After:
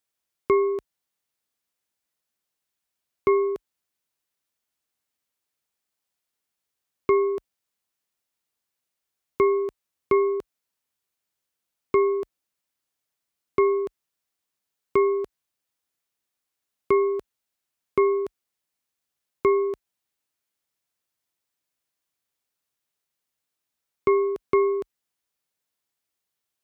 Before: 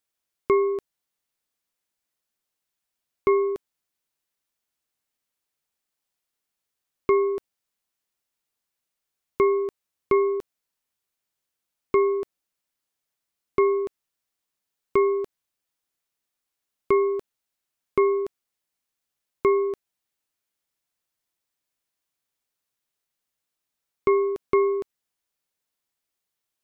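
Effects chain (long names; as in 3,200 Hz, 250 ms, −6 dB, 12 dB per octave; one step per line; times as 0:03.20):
high-pass filter 40 Hz 24 dB per octave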